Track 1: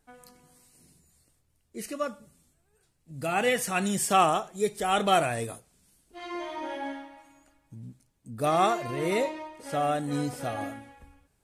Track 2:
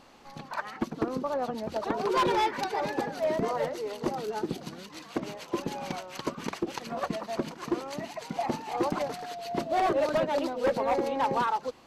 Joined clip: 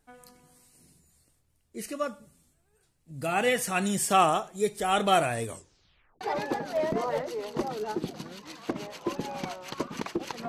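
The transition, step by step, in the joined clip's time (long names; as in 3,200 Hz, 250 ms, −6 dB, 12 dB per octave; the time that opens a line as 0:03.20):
track 1
0:05.44: tape stop 0.77 s
0:06.21: continue with track 2 from 0:02.68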